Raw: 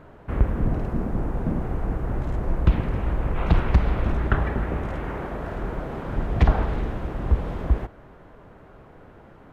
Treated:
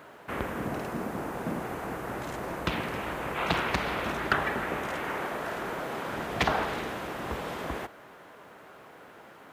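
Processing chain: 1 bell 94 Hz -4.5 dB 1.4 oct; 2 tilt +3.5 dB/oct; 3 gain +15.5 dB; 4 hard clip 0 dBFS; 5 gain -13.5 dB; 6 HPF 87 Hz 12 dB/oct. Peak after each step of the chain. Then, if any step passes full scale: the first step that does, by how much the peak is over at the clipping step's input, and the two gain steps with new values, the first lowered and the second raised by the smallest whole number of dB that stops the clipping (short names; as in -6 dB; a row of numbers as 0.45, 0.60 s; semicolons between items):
-7.5, -9.5, +6.0, 0.0, -13.5, -11.0 dBFS; step 3, 6.0 dB; step 3 +9.5 dB, step 5 -7.5 dB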